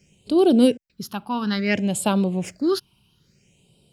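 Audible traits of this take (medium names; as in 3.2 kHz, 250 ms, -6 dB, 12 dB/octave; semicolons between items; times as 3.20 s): phasing stages 6, 0.59 Hz, lowest notch 500–1800 Hz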